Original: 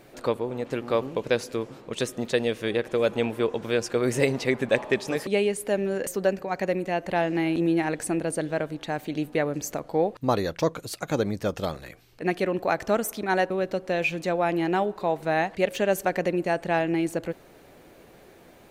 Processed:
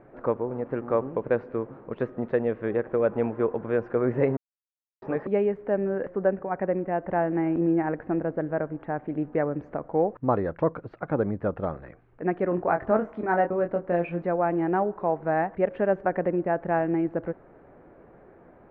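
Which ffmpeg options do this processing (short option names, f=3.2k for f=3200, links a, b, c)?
-filter_complex "[0:a]asettb=1/sr,asplit=3[a][b][c];[a]atrim=end=6.064[d];[b]atrim=start=6.06:end=9.21,asetpts=PTS-STARTPTS,afade=t=in:d=0.004:c=qsin,afade=t=out:st=3.146:d=0.004:c=qsin,lowpass=3.1k[e];[c]atrim=start=9.206[f];[d][e]acrossfade=d=0.004:c1=hsin:c2=qsin[g];[g][f]acrossfade=d=0.004:c1=qsin:c2=hsin,asettb=1/sr,asplit=3[h][i][j];[h]atrim=end=12.494[k];[i]atrim=start=12.49:end=14.22,asetpts=PTS-STARTPTS,afade=t=in:d=0.004:c=qsin,afade=t=out:st=1.726:d=0.004:c=qsin,asplit=2[l][m];[m]adelay=23,volume=-5.5dB[n];[l][n]amix=inputs=2:normalize=0,atrim=end_sample=76293[o];[j]atrim=start=14.216[p];[k][o]acrossfade=d=0.004:c1=hsin:c2=qsin[q];[q][p]acrossfade=d=0.004:c1=qsin:c2=hsin,asplit=3[r][s][t];[r]atrim=end=4.37,asetpts=PTS-STARTPTS,afade=t=out:st=4.366:d=0.004:c=hsin[u];[s]atrim=start=4.37:end=5.02,asetpts=PTS-STARTPTS,volume=0[v];[t]atrim=start=5.02,asetpts=PTS-STARTPTS,afade=t=in:d=0.004:c=hsin[w];[u][v][w]concat=n=3:v=0:a=1,lowpass=f=1.6k:w=0.5412,lowpass=f=1.6k:w=1.3066"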